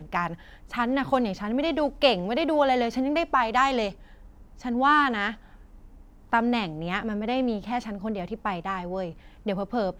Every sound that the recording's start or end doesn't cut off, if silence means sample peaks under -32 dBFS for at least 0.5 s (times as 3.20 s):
4.65–5.33 s